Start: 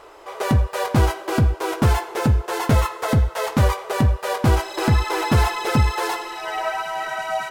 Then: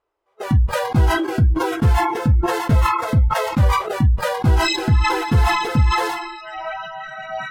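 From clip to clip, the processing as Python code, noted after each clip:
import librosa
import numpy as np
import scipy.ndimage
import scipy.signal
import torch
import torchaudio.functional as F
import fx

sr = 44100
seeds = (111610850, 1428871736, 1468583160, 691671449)

y = fx.noise_reduce_blind(x, sr, reduce_db=29)
y = fx.bass_treble(y, sr, bass_db=6, treble_db=-4)
y = fx.sustainer(y, sr, db_per_s=42.0)
y = y * librosa.db_to_amplitude(-4.0)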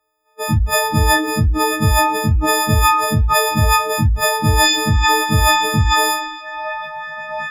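y = fx.freq_snap(x, sr, grid_st=6)
y = y * librosa.db_to_amplitude(1.0)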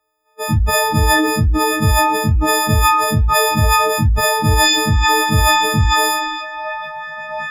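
y = fx.sustainer(x, sr, db_per_s=31.0)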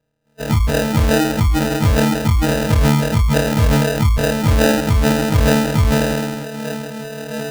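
y = fx.sample_hold(x, sr, seeds[0], rate_hz=1100.0, jitter_pct=0)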